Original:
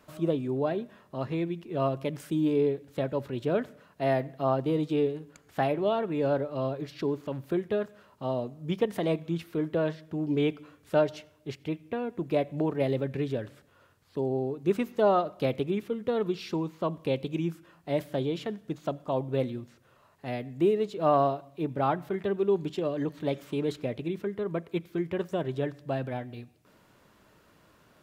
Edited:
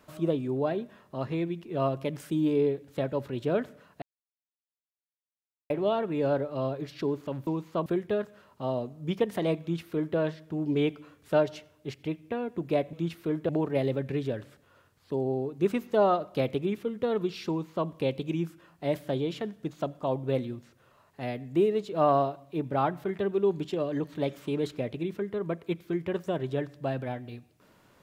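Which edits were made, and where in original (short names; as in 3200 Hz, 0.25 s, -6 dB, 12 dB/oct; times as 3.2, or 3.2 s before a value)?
4.02–5.7 mute
9.22–9.78 copy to 12.54
16.54–16.93 copy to 7.47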